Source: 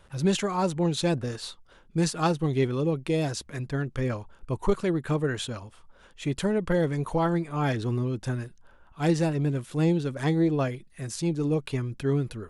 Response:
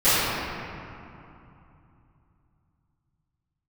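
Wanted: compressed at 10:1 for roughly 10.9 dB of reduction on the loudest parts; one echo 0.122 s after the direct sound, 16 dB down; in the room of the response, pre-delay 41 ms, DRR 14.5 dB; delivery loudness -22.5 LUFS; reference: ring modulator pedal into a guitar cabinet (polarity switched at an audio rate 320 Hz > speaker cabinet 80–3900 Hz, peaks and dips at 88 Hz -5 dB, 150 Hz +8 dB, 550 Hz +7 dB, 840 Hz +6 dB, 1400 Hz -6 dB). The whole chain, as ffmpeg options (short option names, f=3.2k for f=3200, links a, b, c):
-filter_complex "[0:a]acompressor=threshold=-29dB:ratio=10,aecho=1:1:122:0.158,asplit=2[a][b];[1:a]atrim=start_sample=2205,adelay=41[c];[b][c]afir=irnorm=-1:irlink=0,volume=-36.5dB[d];[a][d]amix=inputs=2:normalize=0,aeval=exprs='val(0)*sgn(sin(2*PI*320*n/s))':c=same,highpass=80,equalizer=f=88:t=q:w=4:g=-5,equalizer=f=150:t=q:w=4:g=8,equalizer=f=550:t=q:w=4:g=7,equalizer=f=840:t=q:w=4:g=6,equalizer=f=1.4k:t=q:w=4:g=-6,lowpass=f=3.9k:w=0.5412,lowpass=f=3.9k:w=1.3066,volume=9dB"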